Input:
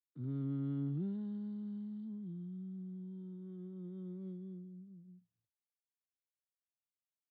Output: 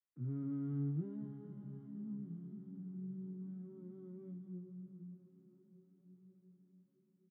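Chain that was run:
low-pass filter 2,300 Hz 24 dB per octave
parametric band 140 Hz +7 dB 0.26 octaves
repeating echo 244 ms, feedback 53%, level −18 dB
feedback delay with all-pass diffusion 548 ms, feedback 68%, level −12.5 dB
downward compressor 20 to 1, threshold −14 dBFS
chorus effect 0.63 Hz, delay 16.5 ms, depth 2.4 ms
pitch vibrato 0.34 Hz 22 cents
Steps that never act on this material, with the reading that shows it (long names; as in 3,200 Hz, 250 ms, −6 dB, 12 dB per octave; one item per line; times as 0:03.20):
downward compressor, threshold −14 dBFS: peak of its input −25.0 dBFS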